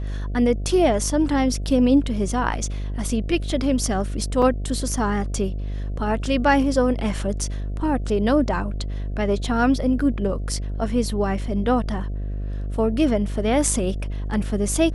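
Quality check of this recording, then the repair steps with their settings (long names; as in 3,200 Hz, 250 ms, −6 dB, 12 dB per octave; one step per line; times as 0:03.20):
mains buzz 50 Hz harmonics 14 −27 dBFS
0:04.42: drop-out 4 ms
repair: hum removal 50 Hz, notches 14
repair the gap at 0:04.42, 4 ms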